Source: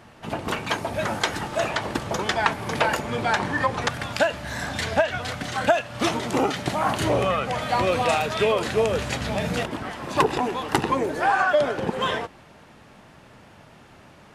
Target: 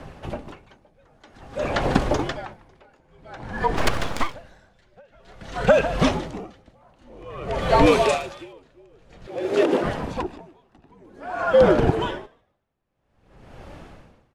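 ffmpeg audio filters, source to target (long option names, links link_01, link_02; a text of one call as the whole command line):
ffmpeg -i in.wav -filter_complex "[0:a]asettb=1/sr,asplit=3[link_01][link_02][link_03];[link_01]atrim=end=7.864[link_04];[link_02]atrim=start=7.86:end=8.53,asetpts=PTS-STARTPTS,afade=type=in:duration=0.004:curve=qsin,afade=type=out:start_time=0.666:duration=0.004:curve=qsin,aemphasis=mode=production:type=bsi[link_05];[link_03]atrim=start=8.526[link_06];[link_04][link_05]acrossfade=duration=0.004:curve1=hsin:curve2=qsin[link_07];[link_07][link_06]acrossfade=duration=0.004:curve1=qsin:curve2=hsin,acrossover=split=8500[link_08][link_09];[link_09]acompressor=threshold=-52dB:ratio=4:attack=1:release=60[link_10];[link_08][link_10]amix=inputs=2:normalize=0,highshelf=frequency=8000:gain=-5,acrossover=split=770|6100[link_11][link_12][link_13];[link_11]acontrast=56[link_14];[link_14][link_12][link_13]amix=inputs=3:normalize=0,afreqshift=-74,aphaser=in_gain=1:out_gain=1:delay=3.5:decay=0.22:speed=1.2:type=sinusoidal,asettb=1/sr,asplit=3[link_15][link_16][link_17];[link_15]atrim=end=9.274[link_18];[link_16]atrim=start=9.27:end=9.84,asetpts=PTS-STARTPTS,afade=type=in:duration=0.004:curve=qsin,afade=type=out:start_time=0.566:duration=0.004:curve=qsin,highpass=frequency=350:width_type=q:width=3.5[link_19];[link_17]atrim=start=9.836[link_20];[link_18][link_19]acrossfade=duration=0.004:curve1=hsin:curve2=qsin[link_21];[link_21][link_20]acrossfade=duration=0.004:curve1=qsin:curve2=hsin,asplit=5[link_22][link_23][link_24][link_25][link_26];[link_23]adelay=150,afreqshift=89,volume=-15dB[link_27];[link_24]adelay=300,afreqshift=178,volume=-22.1dB[link_28];[link_25]adelay=450,afreqshift=267,volume=-29.3dB[link_29];[link_26]adelay=600,afreqshift=356,volume=-36.4dB[link_30];[link_22][link_27][link_28][link_29][link_30]amix=inputs=5:normalize=0,asettb=1/sr,asplit=3[link_31][link_32][link_33];[link_31]atrim=end=3.764[link_34];[link_32]atrim=start=3.76:end=4.35,asetpts=PTS-STARTPTS,afade=type=in:duration=0.004:curve=qsin,afade=type=out:start_time=0.586:duration=0.004:curve=qsin,aeval=exprs='abs(val(0))':channel_layout=same[link_35];[link_33]atrim=start=4.346[link_36];[link_34][link_35]acrossfade=duration=0.004:curve1=hsin:curve2=qsin[link_37];[link_37][link_36]acrossfade=duration=0.004:curve1=qsin:curve2=hsin,alimiter=level_in=3.5dB:limit=-1dB:release=50:level=0:latency=1,aeval=exprs='val(0)*pow(10,-39*(0.5-0.5*cos(2*PI*0.51*n/s))/20)':channel_layout=same" out.wav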